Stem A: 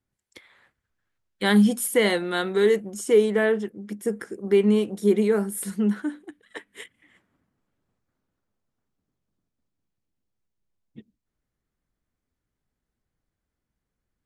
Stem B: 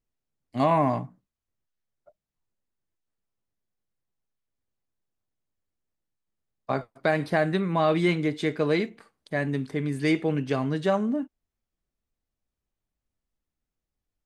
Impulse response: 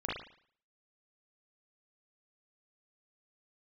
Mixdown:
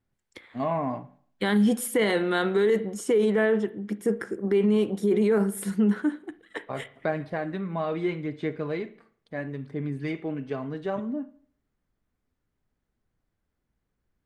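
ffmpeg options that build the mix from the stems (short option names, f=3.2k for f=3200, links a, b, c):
-filter_complex "[0:a]volume=2.5dB,asplit=2[a][b];[b]volume=-19dB[c];[1:a]highshelf=f=4.3k:g=-7.5,aphaser=in_gain=1:out_gain=1:delay=4.7:decay=0.35:speed=0.71:type=sinusoidal,volume=-7dB,asplit=2[d][e];[e]volume=-17dB[f];[2:a]atrim=start_sample=2205[g];[c][f]amix=inputs=2:normalize=0[h];[h][g]afir=irnorm=-1:irlink=0[i];[a][d][i]amix=inputs=3:normalize=0,highshelf=f=4.2k:g=-9,alimiter=limit=-15dB:level=0:latency=1:release=20"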